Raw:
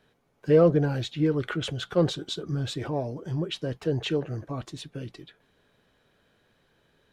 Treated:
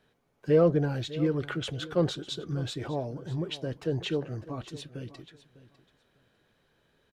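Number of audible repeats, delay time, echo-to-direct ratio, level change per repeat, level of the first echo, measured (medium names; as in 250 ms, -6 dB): 2, 601 ms, -17.0 dB, -14.5 dB, -17.0 dB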